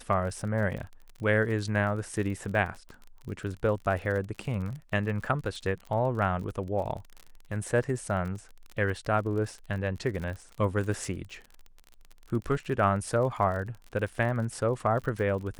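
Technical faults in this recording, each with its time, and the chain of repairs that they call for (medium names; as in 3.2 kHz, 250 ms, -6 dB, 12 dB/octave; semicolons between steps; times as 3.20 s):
crackle 41 per s -36 dBFS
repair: de-click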